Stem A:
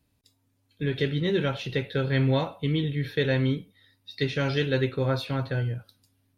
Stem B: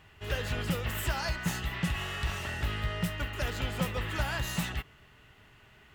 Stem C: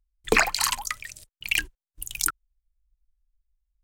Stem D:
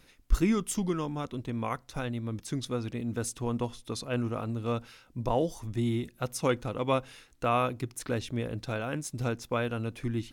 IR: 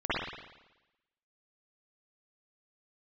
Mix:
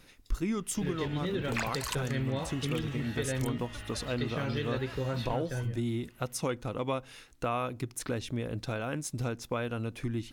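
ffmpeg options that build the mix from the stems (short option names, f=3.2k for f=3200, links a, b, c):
-filter_complex "[0:a]volume=-3.5dB,asplit=2[a][b];[1:a]alimiter=level_in=2dB:limit=-24dB:level=0:latency=1,volume=-2dB,acrossover=split=5200[c][d];[d]acompressor=threshold=-53dB:ratio=4:attack=1:release=60[e];[c][e]amix=inputs=2:normalize=0,adelay=550,volume=-6dB[f];[2:a]adelay=1200,volume=-0.5dB[g];[3:a]volume=2dB[h];[b]apad=whole_len=221872[i];[g][i]sidechaincompress=threshold=-40dB:ratio=8:attack=16:release=197[j];[a][f][j][h]amix=inputs=4:normalize=0,acompressor=threshold=-31dB:ratio=2.5"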